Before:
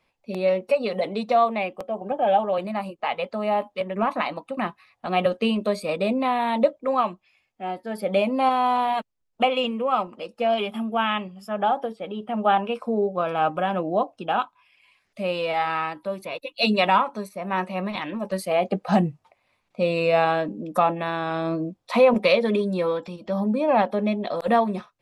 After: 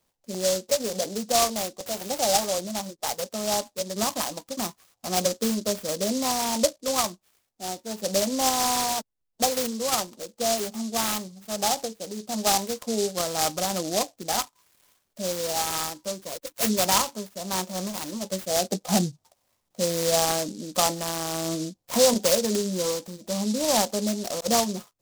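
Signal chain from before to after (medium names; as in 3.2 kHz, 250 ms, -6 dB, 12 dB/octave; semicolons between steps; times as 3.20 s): 1.86–2.47 s: zero-crossing glitches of -19 dBFS; delay time shaken by noise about 5.5 kHz, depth 0.15 ms; trim -3 dB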